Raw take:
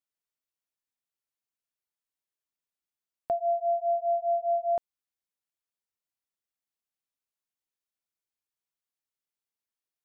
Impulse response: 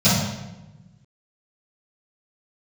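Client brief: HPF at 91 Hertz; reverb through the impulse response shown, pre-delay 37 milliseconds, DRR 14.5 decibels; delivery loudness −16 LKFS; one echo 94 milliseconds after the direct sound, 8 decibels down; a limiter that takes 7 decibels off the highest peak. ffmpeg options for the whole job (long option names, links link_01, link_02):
-filter_complex "[0:a]highpass=91,alimiter=level_in=3dB:limit=-24dB:level=0:latency=1,volume=-3dB,aecho=1:1:94:0.398,asplit=2[link_01][link_02];[1:a]atrim=start_sample=2205,adelay=37[link_03];[link_02][link_03]afir=irnorm=-1:irlink=0,volume=-35dB[link_04];[link_01][link_04]amix=inputs=2:normalize=0,volume=14dB"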